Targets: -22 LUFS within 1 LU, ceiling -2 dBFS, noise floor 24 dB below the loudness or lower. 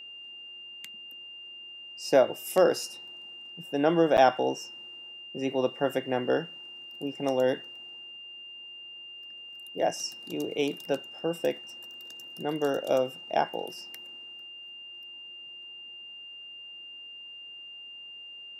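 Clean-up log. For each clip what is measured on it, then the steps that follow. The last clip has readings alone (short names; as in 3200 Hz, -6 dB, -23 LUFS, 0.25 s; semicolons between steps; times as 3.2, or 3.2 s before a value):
dropouts 1; longest dropout 9.0 ms; steady tone 2800 Hz; tone level -42 dBFS; loudness -28.5 LUFS; peak -8.5 dBFS; loudness target -22.0 LUFS
-> interpolate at 4.17, 9 ms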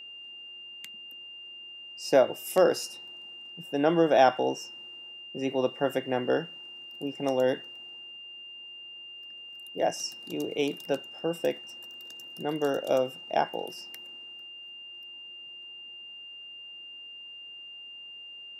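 dropouts 0; steady tone 2800 Hz; tone level -42 dBFS
-> notch 2800 Hz, Q 30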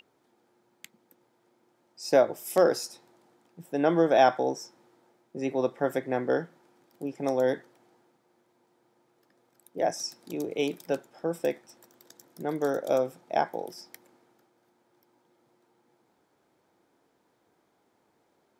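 steady tone none; loudness -28.0 LUFS; peak -8.5 dBFS; loudness target -22.0 LUFS
-> gain +6 dB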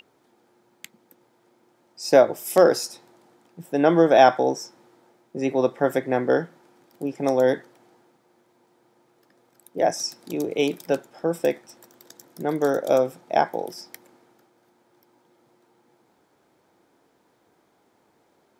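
loudness -22.0 LUFS; peak -2.5 dBFS; noise floor -65 dBFS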